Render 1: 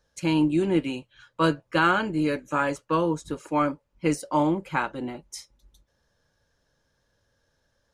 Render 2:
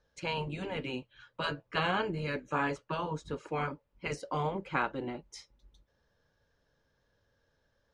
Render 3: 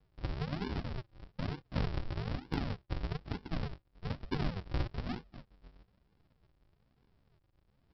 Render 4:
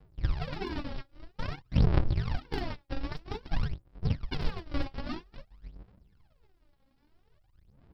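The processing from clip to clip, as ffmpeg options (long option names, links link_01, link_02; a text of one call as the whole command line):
ffmpeg -i in.wav -af "afftfilt=real='re*lt(hypot(re,im),0.316)':imag='im*lt(hypot(re,im),0.316)':win_size=1024:overlap=0.75,lowpass=4500,equalizer=frequency=440:width_type=o:width=0.23:gain=3.5,volume=-3dB" out.wav
ffmpeg -i in.wav -af "acompressor=threshold=-42dB:ratio=2,aresample=11025,acrusher=samples=34:mix=1:aa=0.000001:lfo=1:lforange=34:lforate=1.1,aresample=44100,aeval=exprs='0.0473*(cos(1*acos(clip(val(0)/0.0473,-1,1)))-cos(1*PI/2))+0.000473*(cos(7*acos(clip(val(0)/0.0473,-1,1)))-cos(7*PI/2))':channel_layout=same,volume=5dB" out.wav
ffmpeg -i in.wav -af "aphaser=in_gain=1:out_gain=1:delay=3.7:decay=0.75:speed=0.51:type=sinusoidal" out.wav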